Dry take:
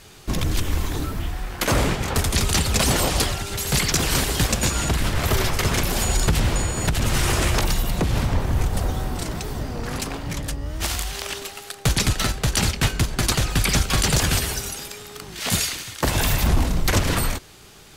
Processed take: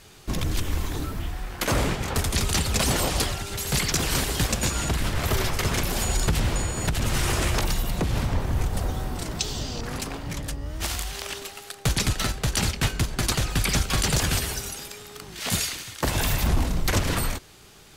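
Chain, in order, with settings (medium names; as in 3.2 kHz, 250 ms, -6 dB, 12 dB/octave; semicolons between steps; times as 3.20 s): 9.39–9.81 s: high-order bell 4.6 kHz +13 dB; trim -3.5 dB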